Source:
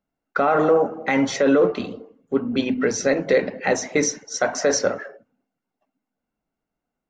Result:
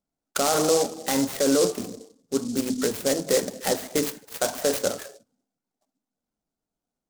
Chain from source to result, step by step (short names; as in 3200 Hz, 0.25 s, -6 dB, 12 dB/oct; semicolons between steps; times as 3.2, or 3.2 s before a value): median filter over 5 samples; noise-modulated delay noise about 6000 Hz, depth 0.11 ms; gain -4 dB